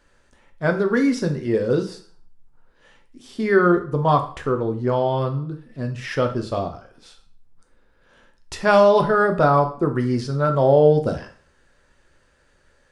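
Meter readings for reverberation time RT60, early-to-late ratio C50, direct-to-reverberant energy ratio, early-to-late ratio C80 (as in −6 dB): 0.50 s, 11.5 dB, 5.0 dB, 16.0 dB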